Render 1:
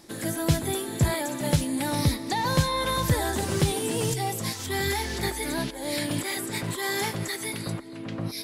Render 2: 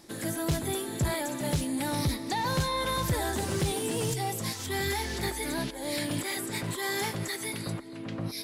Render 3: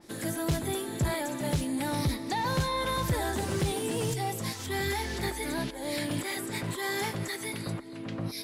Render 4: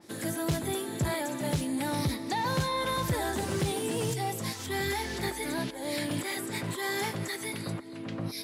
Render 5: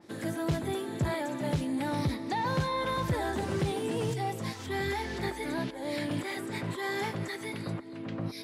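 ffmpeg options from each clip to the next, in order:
-af "asoftclip=type=tanh:threshold=0.112,volume=0.794"
-af "adynamicequalizer=threshold=0.00355:dfrequency=3500:dqfactor=0.7:tfrequency=3500:tqfactor=0.7:attack=5:release=100:ratio=0.375:range=1.5:mode=cutabove:tftype=highshelf"
-af "highpass=85"
-af "lowpass=f=2800:p=1"

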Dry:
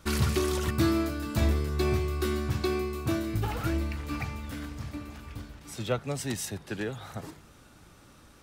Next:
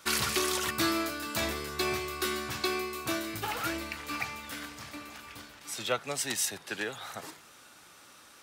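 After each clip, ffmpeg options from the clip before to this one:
-af "highpass=f=1200:p=1,volume=2"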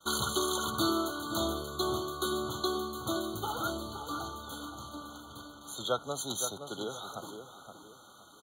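-filter_complex "[0:a]asplit=2[s0][s1];[s1]adelay=519,lowpass=f=2300:p=1,volume=0.398,asplit=2[s2][s3];[s3]adelay=519,lowpass=f=2300:p=1,volume=0.33,asplit=2[s4][s5];[s5]adelay=519,lowpass=f=2300:p=1,volume=0.33,asplit=2[s6][s7];[s7]adelay=519,lowpass=f=2300:p=1,volume=0.33[s8];[s0][s2][s4][s6][s8]amix=inputs=5:normalize=0,agate=range=0.0224:threshold=0.002:ratio=3:detection=peak,afftfilt=real='re*eq(mod(floor(b*sr/1024/1500),2),0)':imag='im*eq(mod(floor(b*sr/1024/1500),2),0)':win_size=1024:overlap=0.75"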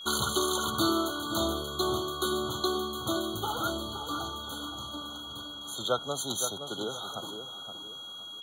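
-af "aeval=exprs='val(0)+0.00708*sin(2*PI*3300*n/s)':c=same,volume=1.33"

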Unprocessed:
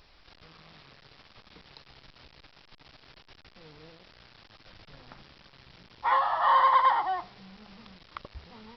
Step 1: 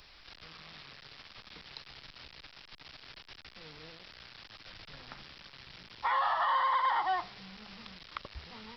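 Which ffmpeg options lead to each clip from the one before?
-filter_complex "[0:a]acrossover=split=130|1300[s0][s1][s2];[s2]acontrast=73[s3];[s0][s1][s3]amix=inputs=3:normalize=0,alimiter=limit=0.1:level=0:latency=1:release=133,volume=0.841"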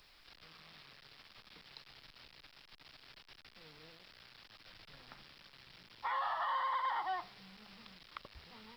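-af "equalizer=f=63:t=o:w=0.92:g=-5.5,acrusher=bits=10:mix=0:aa=0.000001,volume=0.447"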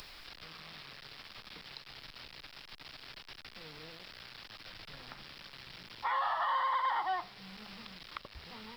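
-af "acompressor=mode=upward:threshold=0.00501:ratio=2.5,volume=1.58"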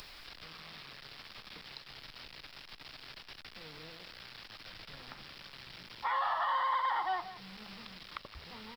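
-af "aecho=1:1:171:0.188"

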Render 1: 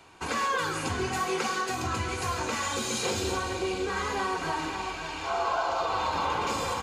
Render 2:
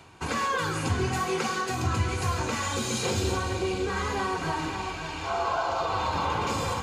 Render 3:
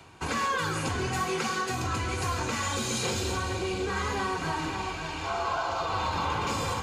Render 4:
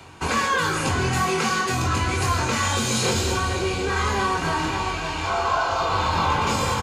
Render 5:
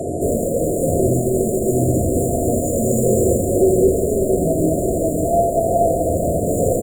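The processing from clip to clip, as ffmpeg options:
-af "areverse,acompressor=mode=upward:threshold=0.0126:ratio=2.5,areverse,equalizer=f=110:t=o:w=1.8:g=9"
-filter_complex "[0:a]acrossover=split=360|900[s0][s1][s2];[s0]asoftclip=type=hard:threshold=0.0282[s3];[s1]alimiter=level_in=2.11:limit=0.0631:level=0:latency=1:release=261,volume=0.473[s4];[s3][s4][s2]amix=inputs=3:normalize=0"
-filter_complex "[0:a]asplit=2[s0][s1];[s1]adelay=23,volume=0.596[s2];[s0][s2]amix=inputs=2:normalize=0,volume=2"
-filter_complex "[0:a]aecho=1:1:80|208|412.8|740.5|1265:0.631|0.398|0.251|0.158|0.1,asplit=2[s0][s1];[s1]highpass=f=720:p=1,volume=79.4,asoftclip=type=tanh:threshold=0.473[s2];[s0][s2]amix=inputs=2:normalize=0,lowpass=f=1600:p=1,volume=0.501,afftfilt=real='re*(1-between(b*sr/4096,720,6900))':imag='im*(1-between(b*sr/4096,720,6900))':win_size=4096:overlap=0.75,volume=1.58"

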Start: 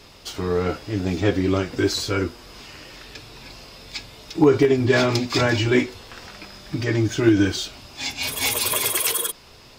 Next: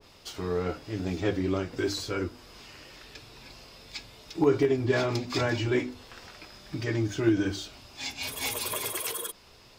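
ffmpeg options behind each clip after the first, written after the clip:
-af "bandreject=f=50:t=h:w=6,bandreject=f=100:t=h:w=6,bandreject=f=150:t=h:w=6,bandreject=f=200:t=h:w=6,bandreject=f=250:t=h:w=6,bandreject=f=300:t=h:w=6,adynamicequalizer=threshold=0.02:dfrequency=1500:dqfactor=0.7:tfrequency=1500:tqfactor=0.7:attack=5:release=100:ratio=0.375:range=2.5:mode=cutabove:tftype=highshelf,volume=0.447"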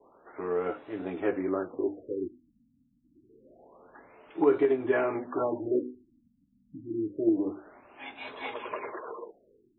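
-filter_complex "[0:a]acrossover=split=250 2100:gain=0.0708 1 0.158[s0][s1][s2];[s0][s1][s2]amix=inputs=3:normalize=0,afftfilt=real='re*lt(b*sr/1024,260*pow(4100/260,0.5+0.5*sin(2*PI*0.27*pts/sr)))':imag='im*lt(b*sr/1024,260*pow(4100/260,0.5+0.5*sin(2*PI*0.27*pts/sr)))':win_size=1024:overlap=0.75,volume=1.19"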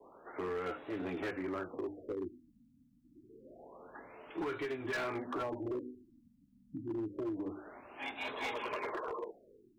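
-filter_complex "[0:a]acrossover=split=120|1300[s0][s1][s2];[s1]acompressor=threshold=0.0158:ratio=12[s3];[s0][s3][s2]amix=inputs=3:normalize=0,asoftclip=type=hard:threshold=0.0188,volume=1.19"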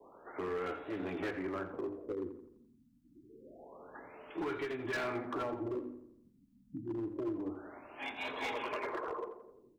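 -filter_complex "[0:a]asplit=2[s0][s1];[s1]adelay=85,lowpass=f=2300:p=1,volume=0.335,asplit=2[s2][s3];[s3]adelay=85,lowpass=f=2300:p=1,volume=0.52,asplit=2[s4][s5];[s5]adelay=85,lowpass=f=2300:p=1,volume=0.52,asplit=2[s6][s7];[s7]adelay=85,lowpass=f=2300:p=1,volume=0.52,asplit=2[s8][s9];[s9]adelay=85,lowpass=f=2300:p=1,volume=0.52,asplit=2[s10][s11];[s11]adelay=85,lowpass=f=2300:p=1,volume=0.52[s12];[s0][s2][s4][s6][s8][s10][s12]amix=inputs=7:normalize=0"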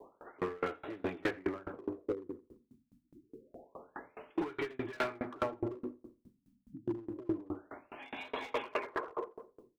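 -af "aeval=exprs='val(0)*pow(10,-30*if(lt(mod(4.8*n/s,1),2*abs(4.8)/1000),1-mod(4.8*n/s,1)/(2*abs(4.8)/1000),(mod(4.8*n/s,1)-2*abs(4.8)/1000)/(1-2*abs(4.8)/1000))/20)':c=same,volume=2.66"

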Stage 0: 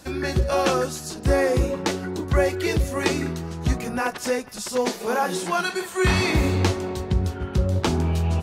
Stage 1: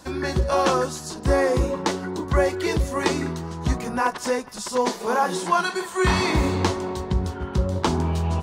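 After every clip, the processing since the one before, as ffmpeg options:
-af "equalizer=f=100:t=o:w=0.33:g=-7,equalizer=f=1000:t=o:w=0.33:g=8,equalizer=f=2500:t=o:w=0.33:g=-4,equalizer=f=12500:t=o:w=0.33:g=-8"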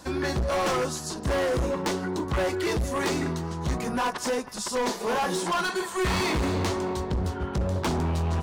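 -af "volume=14.1,asoftclip=hard,volume=0.0708"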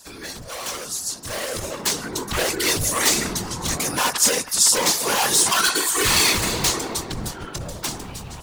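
-af "dynaudnorm=f=400:g=9:m=4.22,afftfilt=real='hypot(re,im)*cos(2*PI*random(0))':imag='hypot(re,im)*sin(2*PI*random(1))':win_size=512:overlap=0.75,crystalizer=i=9:c=0,volume=0.447"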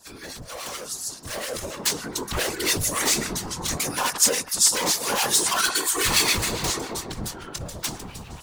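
-filter_complex "[0:a]acrossover=split=1200[s0][s1];[s0]aeval=exprs='val(0)*(1-0.7/2+0.7/2*cos(2*PI*7.2*n/s))':c=same[s2];[s1]aeval=exprs='val(0)*(1-0.7/2-0.7/2*cos(2*PI*7.2*n/s))':c=same[s3];[s2][s3]amix=inputs=2:normalize=0"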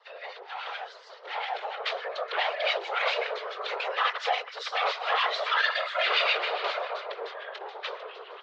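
-af "highpass=f=190:t=q:w=0.5412,highpass=f=190:t=q:w=1.307,lowpass=f=3400:t=q:w=0.5176,lowpass=f=3400:t=q:w=0.7071,lowpass=f=3400:t=q:w=1.932,afreqshift=250"

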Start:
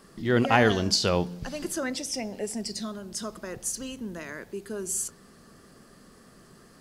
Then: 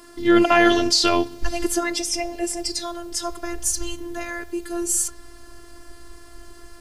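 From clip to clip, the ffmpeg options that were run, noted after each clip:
-af "asubboost=boost=9:cutoff=54,afftfilt=real='hypot(re,im)*cos(PI*b)':imag='0':win_size=512:overlap=0.75,alimiter=level_in=4.22:limit=0.891:release=50:level=0:latency=1,volume=0.891"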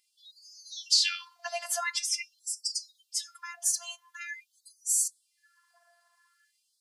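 -af "afftdn=nr=17:nf=-38,afftfilt=real='re*gte(b*sr/1024,580*pow(4500/580,0.5+0.5*sin(2*PI*0.46*pts/sr)))':imag='im*gte(b*sr/1024,580*pow(4500/580,0.5+0.5*sin(2*PI*0.46*pts/sr)))':win_size=1024:overlap=0.75,volume=0.631"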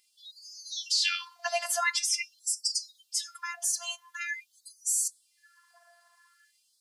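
-af "alimiter=limit=0.141:level=0:latency=1:release=94,volume=1.78"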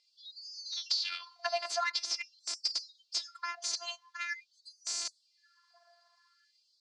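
-filter_complex "[0:a]asplit=2[s0][s1];[s1]adynamicsmooth=sensitivity=4:basefreq=750,volume=1.12[s2];[s0][s2]amix=inputs=2:normalize=0,highpass=500,equalizer=f=890:t=q:w=4:g=-4,equalizer=f=1800:t=q:w=4:g=-5,equalizer=f=2900:t=q:w=4:g=-4,equalizer=f=4500:t=q:w=4:g=9,lowpass=f=5900:w=0.5412,lowpass=f=5900:w=1.3066,acompressor=threshold=0.0562:ratio=12,volume=0.708"

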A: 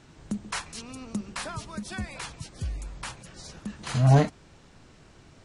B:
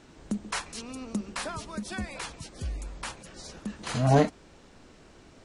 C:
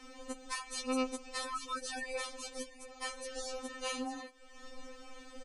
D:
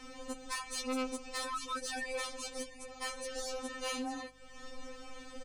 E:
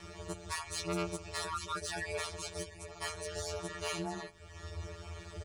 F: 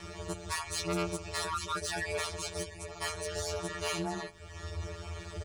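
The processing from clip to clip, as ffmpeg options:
-af "equalizer=f=125:t=o:w=1:g=-7,equalizer=f=250:t=o:w=1:g=3,equalizer=f=500:t=o:w=1:g=3"
-af "aecho=1:1:2.2:0.64,acompressor=threshold=0.0126:ratio=5,afftfilt=real='re*3.46*eq(mod(b,12),0)':imag='im*3.46*eq(mod(b,12),0)':win_size=2048:overlap=0.75,volume=1.78"
-af "aeval=exprs='val(0)+0.000316*(sin(2*PI*50*n/s)+sin(2*PI*2*50*n/s)/2+sin(2*PI*3*50*n/s)/3+sin(2*PI*4*50*n/s)/4+sin(2*PI*5*50*n/s)/5)':c=same,asoftclip=type=tanh:threshold=0.02,volume=1.41"
-af "aeval=exprs='val(0)*sin(2*PI*82*n/s)':c=same,volume=1.41"
-af "asoftclip=type=tanh:threshold=0.0335,volume=1.68"

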